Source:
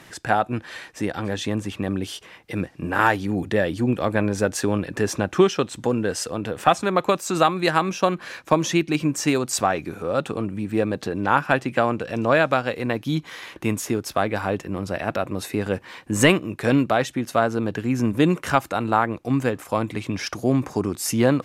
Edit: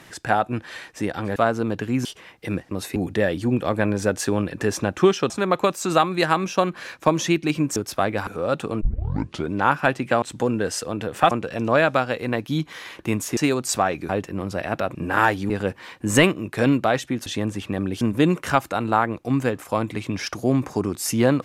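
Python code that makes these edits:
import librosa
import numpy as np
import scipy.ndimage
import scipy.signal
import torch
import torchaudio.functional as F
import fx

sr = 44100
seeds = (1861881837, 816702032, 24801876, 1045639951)

y = fx.edit(x, sr, fx.swap(start_s=1.36, length_s=0.75, other_s=17.32, other_length_s=0.69),
    fx.swap(start_s=2.77, length_s=0.55, other_s=15.31, other_length_s=0.25),
    fx.move(start_s=5.66, length_s=1.09, to_s=11.88),
    fx.swap(start_s=9.21, length_s=0.72, other_s=13.94, other_length_s=0.51),
    fx.tape_start(start_s=10.47, length_s=0.72), tone=tone)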